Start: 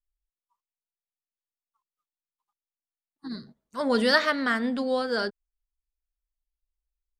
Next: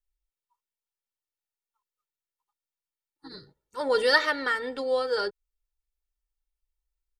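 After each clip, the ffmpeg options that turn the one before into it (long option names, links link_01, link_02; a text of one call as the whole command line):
ffmpeg -i in.wav -af "aecho=1:1:2.2:0.94,volume=-3.5dB" out.wav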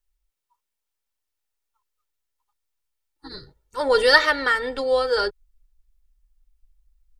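ffmpeg -i in.wav -af "asubboost=boost=8:cutoff=69,volume=6.5dB" out.wav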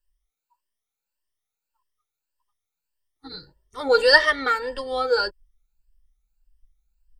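ffmpeg -i in.wav -af "afftfilt=real='re*pow(10,14/40*sin(2*PI*(1.3*log(max(b,1)*sr/1024/100)/log(2)-(1.7)*(pts-256)/sr)))':imag='im*pow(10,14/40*sin(2*PI*(1.3*log(max(b,1)*sr/1024/100)/log(2)-(1.7)*(pts-256)/sr)))':win_size=1024:overlap=0.75,volume=-4dB" out.wav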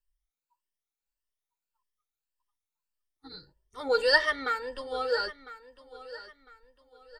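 ffmpeg -i in.wav -af "aecho=1:1:1003|2006|3009:0.158|0.0523|0.0173,volume=-7.5dB" out.wav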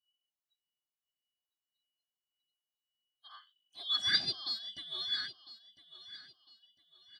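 ffmpeg -i in.wav -af "afftfilt=real='real(if(lt(b,272),68*(eq(floor(b/68),0)*2+eq(floor(b/68),1)*3+eq(floor(b/68),2)*0+eq(floor(b/68),3)*1)+mod(b,68),b),0)':imag='imag(if(lt(b,272),68*(eq(floor(b/68),0)*2+eq(floor(b/68),1)*3+eq(floor(b/68),2)*0+eq(floor(b/68),3)*1)+mod(b,68),b),0)':win_size=2048:overlap=0.75,volume=-7.5dB" out.wav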